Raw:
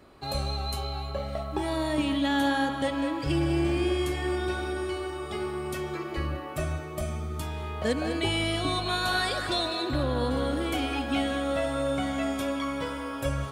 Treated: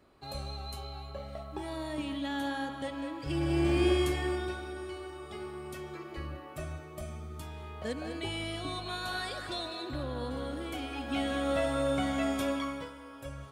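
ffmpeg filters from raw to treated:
-af "volume=2.66,afade=t=in:st=3.23:d=0.66:silence=0.316228,afade=t=out:st=3.89:d=0.72:silence=0.316228,afade=t=in:st=10.93:d=0.58:silence=0.421697,afade=t=out:st=12.51:d=0.41:silence=0.251189"

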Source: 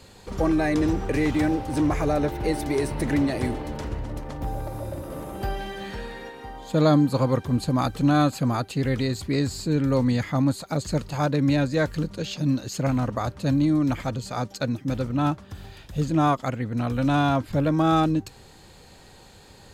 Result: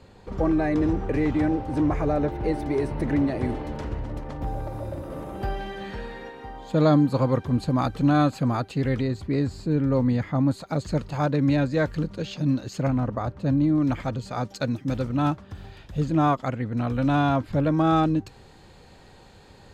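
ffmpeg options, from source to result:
-af "asetnsamples=n=441:p=0,asendcmd='3.49 lowpass f 3000;9.01 lowpass f 1300;10.51 lowpass f 2800;12.88 lowpass f 1200;13.78 lowpass f 2900;14.44 lowpass f 6400;15.38 lowpass f 3000',lowpass=f=1400:p=1"

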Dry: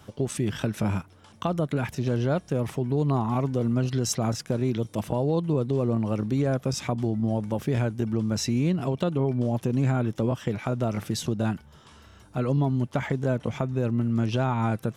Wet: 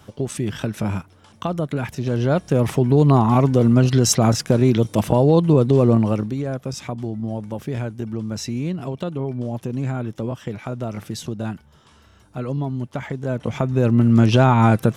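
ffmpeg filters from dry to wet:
-af "volume=12.6,afade=t=in:st=2.04:d=0.7:silence=0.421697,afade=t=out:st=5.94:d=0.41:silence=0.281838,afade=t=in:st=13.22:d=0.91:silence=0.251189"

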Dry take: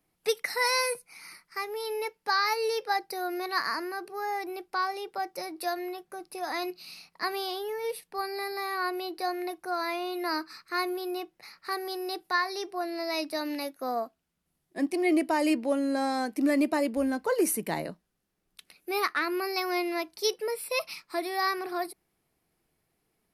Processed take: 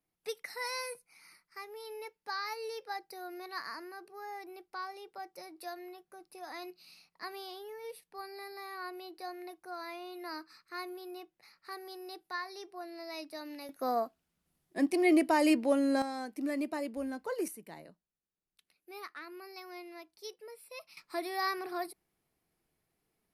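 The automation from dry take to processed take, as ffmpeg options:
-af "asetnsamples=n=441:p=0,asendcmd='13.69 volume volume -0.5dB;16.02 volume volume -9.5dB;17.48 volume volume -17.5dB;20.97 volume volume -5dB',volume=0.266"

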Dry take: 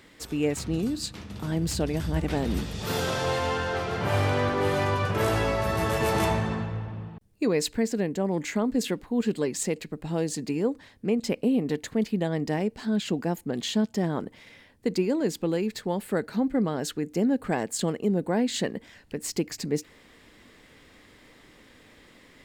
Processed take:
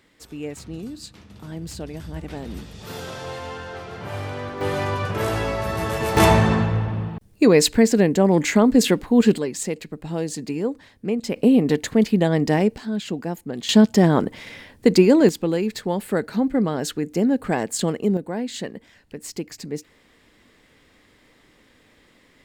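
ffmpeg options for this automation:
-af "asetnsamples=n=441:p=0,asendcmd='4.61 volume volume 1dB;6.17 volume volume 10.5dB;9.38 volume volume 1.5dB;11.36 volume volume 8.5dB;12.78 volume volume 0dB;13.69 volume volume 11.5dB;15.29 volume volume 4.5dB;18.17 volume volume -2.5dB',volume=0.501"

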